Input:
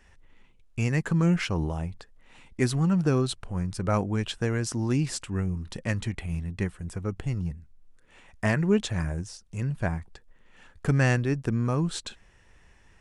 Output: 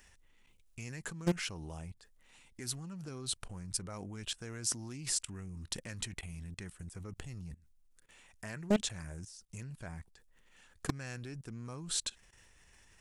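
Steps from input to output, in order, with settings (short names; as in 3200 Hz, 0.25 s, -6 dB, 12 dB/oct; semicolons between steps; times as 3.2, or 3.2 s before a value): level quantiser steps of 20 dB; pre-emphasis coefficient 0.8; Doppler distortion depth 0.64 ms; gain +10 dB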